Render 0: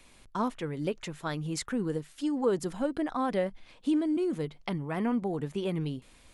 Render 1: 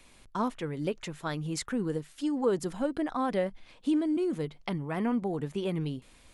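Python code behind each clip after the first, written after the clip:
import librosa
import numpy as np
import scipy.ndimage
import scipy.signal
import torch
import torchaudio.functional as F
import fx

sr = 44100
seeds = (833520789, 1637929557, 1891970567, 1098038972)

y = x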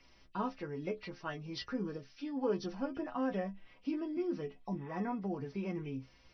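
y = fx.freq_compress(x, sr, knee_hz=1700.0, ratio=1.5)
y = fx.stiff_resonator(y, sr, f0_hz=63.0, decay_s=0.24, stiffness=0.008)
y = fx.spec_repair(y, sr, seeds[0], start_s=4.65, length_s=0.28, low_hz=1100.0, high_hz=3700.0, source='both')
y = F.gain(torch.from_numpy(y), 1.0).numpy()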